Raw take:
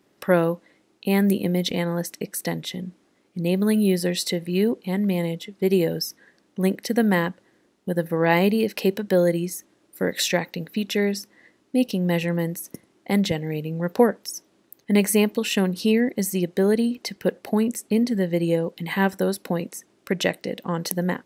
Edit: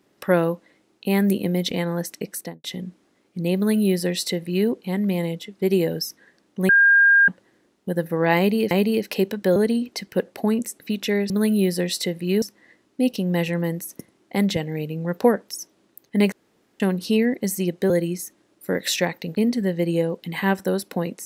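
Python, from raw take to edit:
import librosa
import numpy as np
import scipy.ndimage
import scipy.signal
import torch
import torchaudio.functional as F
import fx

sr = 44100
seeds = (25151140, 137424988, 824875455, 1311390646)

y = fx.studio_fade_out(x, sr, start_s=2.32, length_s=0.32)
y = fx.edit(y, sr, fx.duplicate(start_s=3.56, length_s=1.12, to_s=11.17),
    fx.bleep(start_s=6.69, length_s=0.59, hz=1610.0, db=-11.0),
    fx.repeat(start_s=8.37, length_s=0.34, count=2),
    fx.swap(start_s=9.22, length_s=1.45, other_s=16.65, other_length_s=1.24),
    fx.room_tone_fill(start_s=15.07, length_s=0.48), tone=tone)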